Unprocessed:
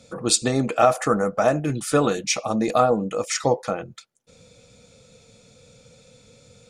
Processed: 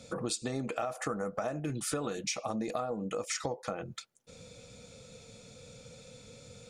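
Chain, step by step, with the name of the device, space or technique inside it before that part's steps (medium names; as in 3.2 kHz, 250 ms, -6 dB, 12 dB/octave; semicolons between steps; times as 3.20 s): serial compression, peaks first (compression 4:1, threshold -27 dBFS, peak gain reduction 13.5 dB; compression 2:1, threshold -35 dBFS, peak gain reduction 7 dB)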